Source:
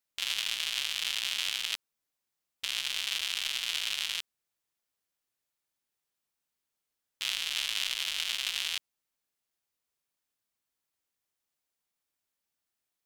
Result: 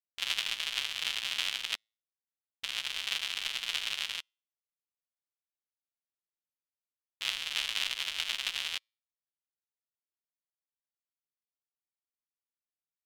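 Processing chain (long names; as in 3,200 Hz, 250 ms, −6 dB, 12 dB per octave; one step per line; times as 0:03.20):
high-shelf EQ 3,900 Hz −8 dB
tuned comb filter 110 Hz, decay 0.51 s, harmonics all, mix 30%
expander for the loud parts 2.5 to 1, over −53 dBFS
level +8.5 dB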